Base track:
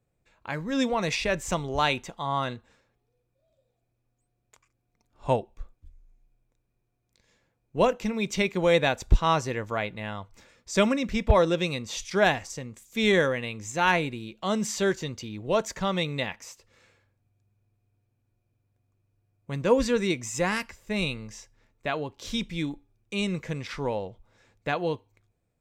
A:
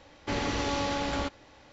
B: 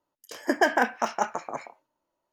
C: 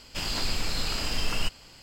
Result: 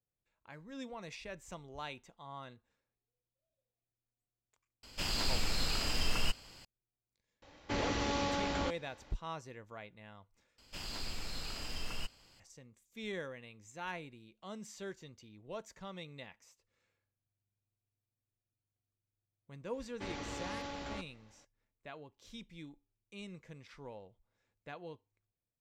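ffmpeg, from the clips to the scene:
-filter_complex "[3:a]asplit=2[s0][s1];[1:a]asplit=2[s2][s3];[0:a]volume=0.106,asplit=2[s4][s5];[s4]atrim=end=10.584[s6];[s1]atrim=end=1.82,asetpts=PTS-STARTPTS,volume=0.237[s7];[s5]atrim=start=12.396[s8];[s0]atrim=end=1.82,asetpts=PTS-STARTPTS,volume=0.596,afade=t=in:d=0.004:c=hsin,afade=t=out:st=1.816:d=0.004:c=hsin,adelay=4830[s9];[s2]atrim=end=1.72,asetpts=PTS-STARTPTS,volume=0.596,afade=t=in:d=0.004:c=hsin,afade=t=out:st=1.716:d=0.004:c=hsin,adelay=7420[s10];[s3]atrim=end=1.72,asetpts=PTS-STARTPTS,volume=0.237,afade=t=in:d=0.004:c=hsin,afade=t=out:st=1.716:d=0.004:c=hsin,adelay=19730[s11];[s6][s7]acrossfade=d=0.004:c1=hsin:c2=hsin[s12];[s12][s8]acrossfade=d=0.004:c1=hsin:c2=hsin[s13];[s13][s9][s10][s11]amix=inputs=4:normalize=0"

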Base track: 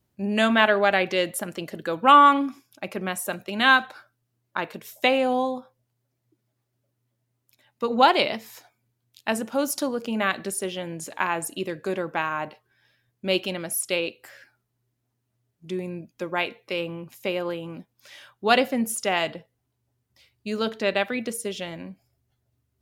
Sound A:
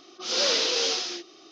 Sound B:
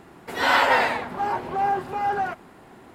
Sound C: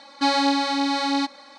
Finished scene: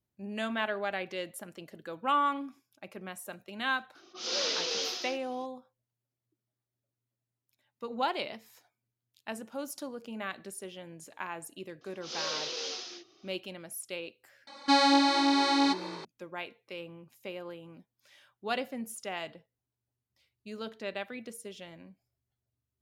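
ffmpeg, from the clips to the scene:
-filter_complex "[1:a]asplit=2[s0][s1];[0:a]volume=0.211[s2];[3:a]asplit=7[s3][s4][s5][s6][s7][s8][s9];[s4]adelay=227,afreqshift=50,volume=0.126[s10];[s5]adelay=454,afreqshift=100,volume=0.0794[s11];[s6]adelay=681,afreqshift=150,volume=0.0501[s12];[s7]adelay=908,afreqshift=200,volume=0.0316[s13];[s8]adelay=1135,afreqshift=250,volume=0.0197[s14];[s9]adelay=1362,afreqshift=300,volume=0.0124[s15];[s3][s10][s11][s12][s13][s14][s15]amix=inputs=7:normalize=0[s16];[s0]atrim=end=1.51,asetpts=PTS-STARTPTS,volume=0.422,afade=t=in:d=0.004:c=hsin,afade=t=out:st=1.506:d=0.004:c=hsin,adelay=3950[s17];[s1]atrim=end=1.51,asetpts=PTS-STARTPTS,volume=0.266,afade=t=in:d=0.004:c=hsin,afade=t=out:st=1.506:d=0.004:c=hsin,adelay=11810[s18];[s16]atrim=end=1.58,asetpts=PTS-STARTPTS,volume=0.75,afade=t=in:d=0.004:c=hsin,afade=t=out:st=1.576:d=0.004:c=hsin,adelay=14470[s19];[s2][s17][s18][s19]amix=inputs=4:normalize=0"

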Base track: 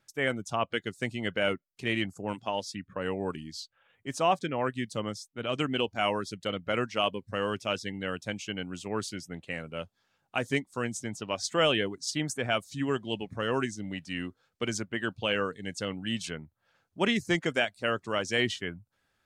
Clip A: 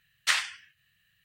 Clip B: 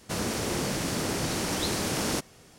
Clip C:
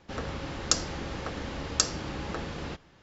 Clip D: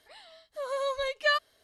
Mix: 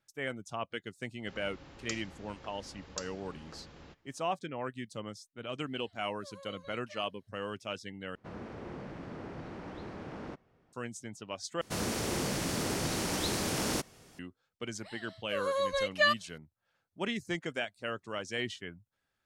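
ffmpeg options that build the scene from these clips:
-filter_complex "[4:a]asplit=2[s0][s1];[2:a]asplit=2[s2][s3];[0:a]volume=0.398[s4];[s0]acompressor=threshold=0.0282:ratio=6:attack=3.2:release=140:knee=1:detection=peak[s5];[s2]lowpass=1700[s6];[s3]asoftclip=type=hard:threshold=0.126[s7];[s4]asplit=3[s8][s9][s10];[s8]atrim=end=8.154[s11];[s6]atrim=end=2.58,asetpts=PTS-STARTPTS,volume=0.237[s12];[s9]atrim=start=10.726:end=11.614[s13];[s7]atrim=end=2.58,asetpts=PTS-STARTPTS,volume=0.668[s14];[s10]atrim=start=14.186[s15];[3:a]atrim=end=3.02,asetpts=PTS-STARTPTS,volume=0.158,afade=t=in:d=0.004:c=hsin,afade=t=out:st=3.016:d=0.004:c=hsin,adelay=1180[s16];[s5]atrim=end=1.63,asetpts=PTS-STARTPTS,volume=0.141,afade=t=in:d=0.004:c=hsin,afade=t=out:st=1.626:d=0.004:c=hsin,adelay=5660[s17];[s1]atrim=end=1.63,asetpts=PTS-STARTPTS,volume=0.944,afade=t=in:d=0.004:c=hsin,afade=t=out:st=1.626:d=0.004:c=hsin,adelay=14750[s18];[s11][s12]acrossfade=d=0.004:c1=hsin:c2=hsin[s19];[s19][s13]acrossfade=d=0.004:c1=hsin:c2=hsin[s20];[s20][s14]acrossfade=d=0.004:c1=hsin:c2=hsin[s21];[s21][s15]acrossfade=d=0.004:c1=hsin:c2=hsin[s22];[s22][s16][s17][s18]amix=inputs=4:normalize=0"

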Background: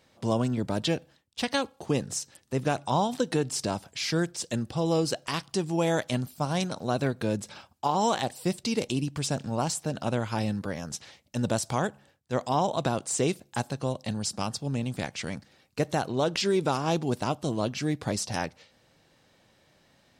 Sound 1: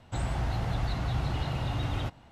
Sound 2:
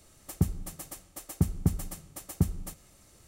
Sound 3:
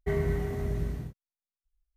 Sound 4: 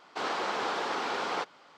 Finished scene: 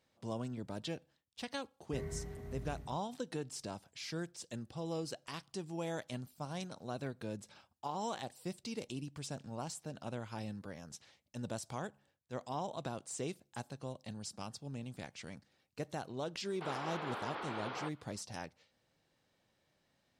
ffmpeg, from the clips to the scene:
-filter_complex "[0:a]volume=0.2[s0];[4:a]lowpass=f=3800:w=0.5412,lowpass=f=3800:w=1.3066[s1];[3:a]atrim=end=1.96,asetpts=PTS-STARTPTS,volume=0.188,afade=t=in:d=0.004:c=hsin,afade=t=out:st=1.956:d=0.004:c=hsin,adelay=1860[s2];[s1]atrim=end=1.77,asetpts=PTS-STARTPTS,volume=0.299,afade=t=in:d=0.004:c=hsin,afade=t=out:st=1.766:d=0.004:c=hsin,adelay=16450[s3];[s0][s2][s3]amix=inputs=3:normalize=0"

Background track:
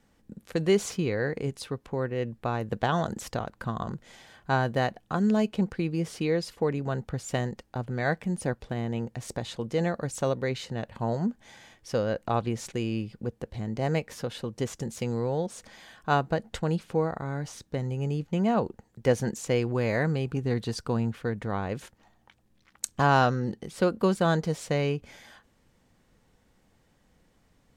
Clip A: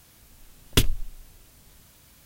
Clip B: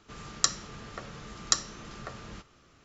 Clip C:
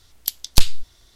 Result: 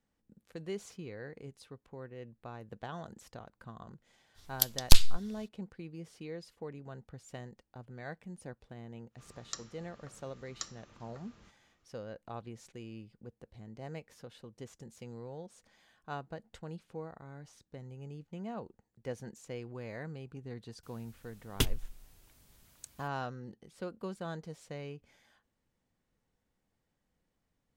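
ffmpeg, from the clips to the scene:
-filter_complex "[0:a]volume=0.15[s0];[3:a]atrim=end=1.15,asetpts=PTS-STARTPTS,volume=0.631,afade=t=in:d=0.05,afade=t=out:st=1.1:d=0.05,adelay=4340[s1];[2:a]atrim=end=2.84,asetpts=PTS-STARTPTS,volume=0.158,afade=t=in:d=0.1,afade=t=out:st=2.74:d=0.1,adelay=9090[s2];[1:a]atrim=end=2.25,asetpts=PTS-STARTPTS,volume=0.335,afade=t=in:d=0.004:c=hsin,afade=t=out:st=2.246:d=0.004:c=hsin,adelay=20830[s3];[s0][s1][s2][s3]amix=inputs=4:normalize=0"

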